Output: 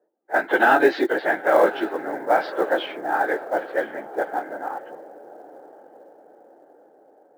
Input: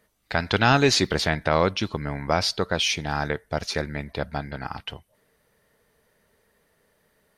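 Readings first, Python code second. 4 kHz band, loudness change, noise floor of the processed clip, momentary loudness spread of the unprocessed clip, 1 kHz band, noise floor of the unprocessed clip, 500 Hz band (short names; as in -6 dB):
-12.5 dB, +2.0 dB, -56 dBFS, 14 LU, +5.0 dB, -68 dBFS, +5.5 dB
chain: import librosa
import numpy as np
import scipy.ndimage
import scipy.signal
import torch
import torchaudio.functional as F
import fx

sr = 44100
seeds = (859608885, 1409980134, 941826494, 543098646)

y = fx.phase_scramble(x, sr, seeds[0], window_ms=50)
y = fx.cabinet(y, sr, low_hz=310.0, low_slope=24, high_hz=2800.0, hz=(330.0, 530.0, 780.0, 1100.0, 1600.0, 2500.0), db=(8, 6, 9, -4, 7, -9))
y = fx.echo_diffused(y, sr, ms=1044, feedback_pct=50, wet_db=-15)
y = fx.env_lowpass(y, sr, base_hz=530.0, full_db=-14.5)
y = fx.quant_float(y, sr, bits=4)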